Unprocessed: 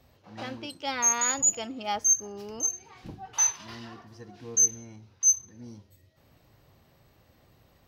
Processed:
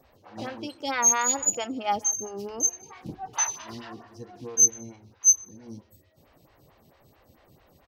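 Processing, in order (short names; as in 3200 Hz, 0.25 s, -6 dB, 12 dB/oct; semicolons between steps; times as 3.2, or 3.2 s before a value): on a send: echo 0.153 s -22 dB; on the sum: photocell phaser 4.5 Hz; gain +6 dB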